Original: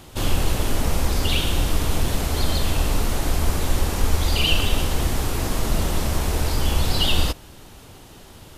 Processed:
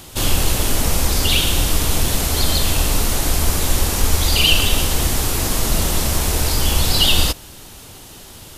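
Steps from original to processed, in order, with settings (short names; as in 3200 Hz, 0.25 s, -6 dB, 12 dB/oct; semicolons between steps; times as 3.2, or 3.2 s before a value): high shelf 3300 Hz +9.5 dB; gain +2.5 dB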